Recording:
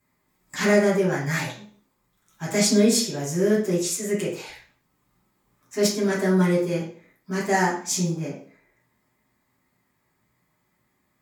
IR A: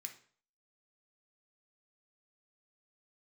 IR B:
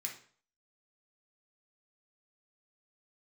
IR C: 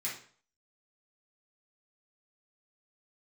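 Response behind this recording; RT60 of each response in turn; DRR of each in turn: C; 0.50, 0.50, 0.50 s; 3.5, -0.5, -8.0 dB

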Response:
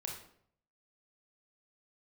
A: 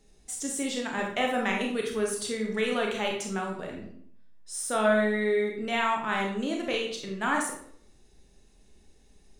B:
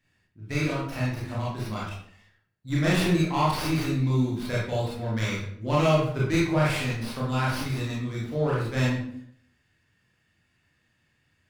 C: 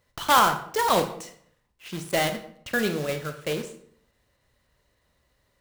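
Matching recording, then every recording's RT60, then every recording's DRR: A; 0.65, 0.65, 0.65 s; 0.0, -7.0, 7.5 dB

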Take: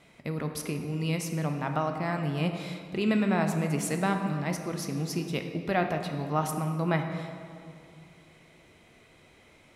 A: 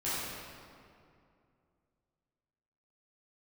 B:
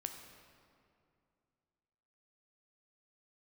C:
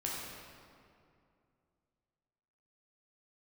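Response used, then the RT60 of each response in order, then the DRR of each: B; 2.4, 2.5, 2.4 s; -12.5, 5.0, -5.0 dB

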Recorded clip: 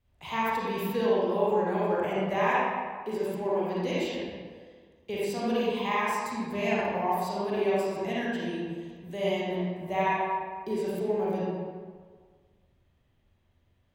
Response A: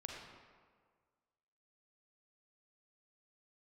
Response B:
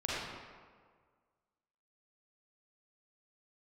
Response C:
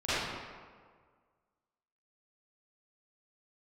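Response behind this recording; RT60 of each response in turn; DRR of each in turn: B; 1.7, 1.7, 1.7 s; -1.0, -8.0, -16.5 dB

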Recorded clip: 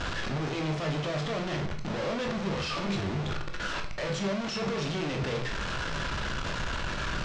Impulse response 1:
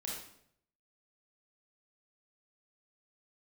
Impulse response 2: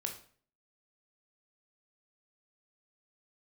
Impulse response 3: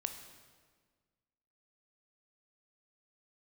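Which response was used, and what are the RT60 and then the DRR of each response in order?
2; 0.70, 0.50, 1.6 s; -4.0, 3.0, 6.0 dB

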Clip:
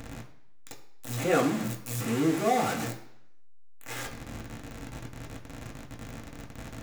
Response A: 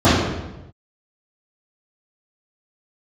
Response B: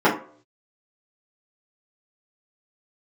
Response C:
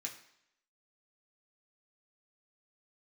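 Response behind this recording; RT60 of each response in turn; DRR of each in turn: C; 1.0, 0.50, 0.75 s; -15.0, -10.5, -1.5 dB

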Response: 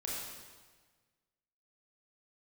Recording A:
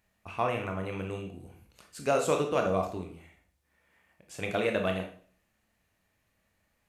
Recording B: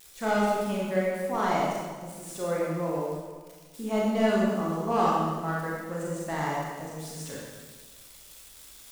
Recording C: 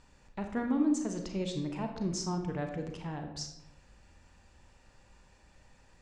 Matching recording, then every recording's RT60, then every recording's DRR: B; 0.45, 1.4, 0.90 s; 2.5, -5.0, 4.0 dB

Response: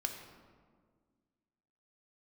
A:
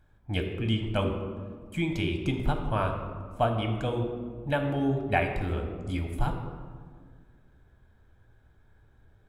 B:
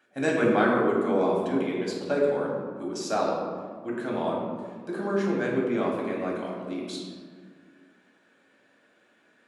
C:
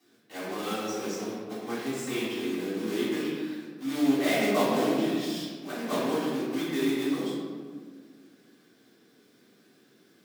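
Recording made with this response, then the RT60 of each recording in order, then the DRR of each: A; 1.7, 1.7, 1.7 s; 3.5, -3.5, -12.5 dB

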